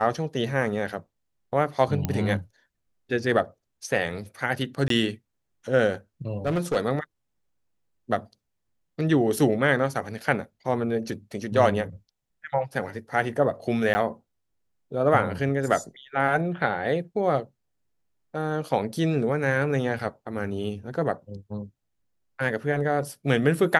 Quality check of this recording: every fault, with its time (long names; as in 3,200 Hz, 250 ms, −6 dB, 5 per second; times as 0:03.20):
0:02.05: click −12 dBFS
0:04.88–0:04.90: drop-out 23 ms
0:06.46–0:06.77: clipping −20.5 dBFS
0:13.94–0:13.95: drop-out 10 ms
0:19.99: drop-out 3.3 ms